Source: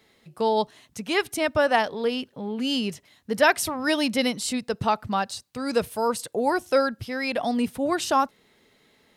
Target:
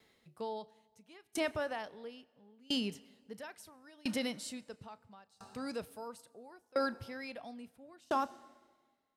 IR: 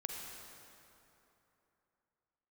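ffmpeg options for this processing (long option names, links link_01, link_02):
-filter_complex "[0:a]alimiter=limit=-15.5dB:level=0:latency=1:release=46,asplit=2[link_01][link_02];[1:a]atrim=start_sample=2205,adelay=34[link_03];[link_02][link_03]afir=irnorm=-1:irlink=0,volume=-15dB[link_04];[link_01][link_04]amix=inputs=2:normalize=0,aeval=exprs='val(0)*pow(10,-30*if(lt(mod(0.74*n/s,1),2*abs(0.74)/1000),1-mod(0.74*n/s,1)/(2*abs(0.74)/1000),(mod(0.74*n/s,1)-2*abs(0.74)/1000)/(1-2*abs(0.74)/1000))/20)':channel_layout=same,volume=-6dB"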